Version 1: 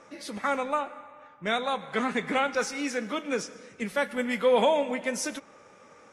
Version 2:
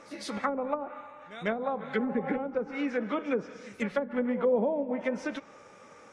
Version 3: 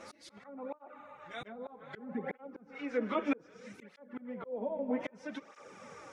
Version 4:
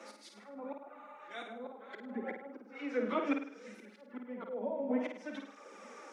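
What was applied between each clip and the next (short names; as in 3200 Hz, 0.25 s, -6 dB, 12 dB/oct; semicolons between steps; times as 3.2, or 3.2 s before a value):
pre-echo 0.151 s -18 dB; treble ducked by the level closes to 430 Hz, closed at -22.5 dBFS; spectral repair 1.86–2.36, 500–1300 Hz both; gain +1 dB
auto swell 0.782 s; tape flanging out of phase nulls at 0.63 Hz, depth 7 ms; gain +5 dB
steep high-pass 200 Hz 96 dB/oct; on a send: flutter echo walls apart 8.9 m, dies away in 0.51 s; on the sum: gain -1.5 dB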